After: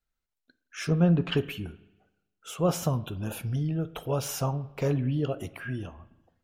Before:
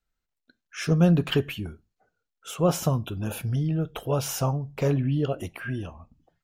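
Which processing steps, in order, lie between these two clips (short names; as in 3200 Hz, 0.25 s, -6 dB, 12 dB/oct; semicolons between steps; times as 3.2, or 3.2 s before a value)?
vibrato 4.3 Hz 26 cents; 0.84–1.37 treble ducked by the level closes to 2500 Hz, closed at -17 dBFS; spring tank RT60 1 s, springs 40/55 ms, chirp 40 ms, DRR 16.5 dB; gain -3 dB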